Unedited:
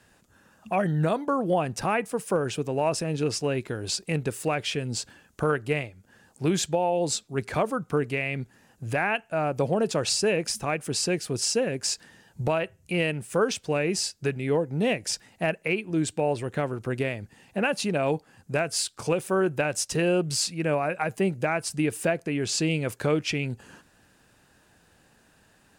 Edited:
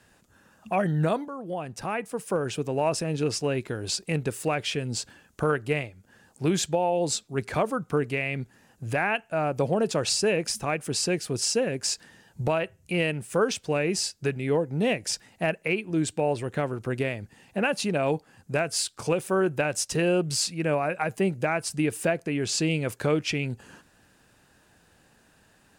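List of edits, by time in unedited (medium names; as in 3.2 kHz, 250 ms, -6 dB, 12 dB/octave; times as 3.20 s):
1.28–2.68 s: fade in, from -13 dB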